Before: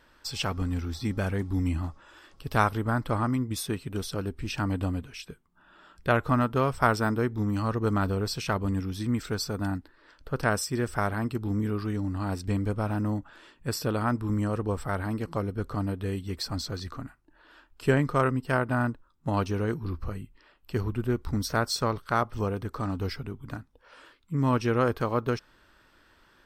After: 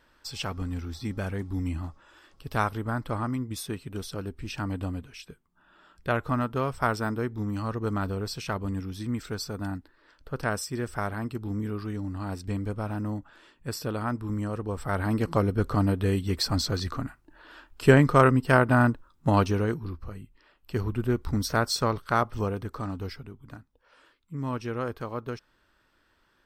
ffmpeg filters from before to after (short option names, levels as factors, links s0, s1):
-af "volume=4.73,afade=t=in:st=14.72:d=0.53:silence=0.354813,afade=t=out:st=19.29:d=0.71:silence=0.251189,afade=t=in:st=20:d=1.06:silence=0.421697,afade=t=out:st=22.22:d=1.1:silence=0.375837"